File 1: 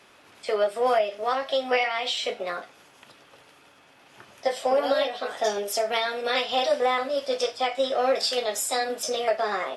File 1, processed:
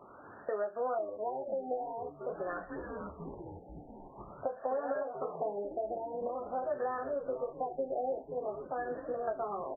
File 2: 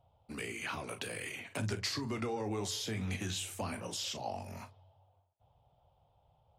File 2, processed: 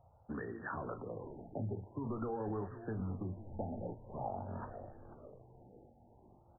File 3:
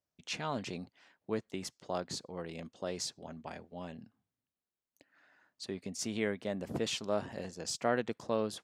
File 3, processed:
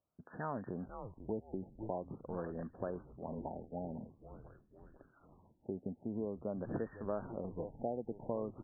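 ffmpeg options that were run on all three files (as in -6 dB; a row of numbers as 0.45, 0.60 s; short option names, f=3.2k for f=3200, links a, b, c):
-filter_complex "[0:a]asplit=6[a][b][c][d][e][f];[b]adelay=495,afreqshift=-110,volume=-14.5dB[g];[c]adelay=990,afreqshift=-220,volume=-20dB[h];[d]adelay=1485,afreqshift=-330,volume=-25.5dB[i];[e]adelay=1980,afreqshift=-440,volume=-31dB[j];[f]adelay=2475,afreqshift=-550,volume=-36.6dB[k];[a][g][h][i][j][k]amix=inputs=6:normalize=0,acompressor=threshold=-41dB:ratio=3,afftfilt=real='re*lt(b*sr/1024,870*pow(1900/870,0.5+0.5*sin(2*PI*0.47*pts/sr)))':imag='im*lt(b*sr/1024,870*pow(1900/870,0.5+0.5*sin(2*PI*0.47*pts/sr)))':win_size=1024:overlap=0.75,volume=4dB"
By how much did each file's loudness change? -11.5, -4.5, -4.5 LU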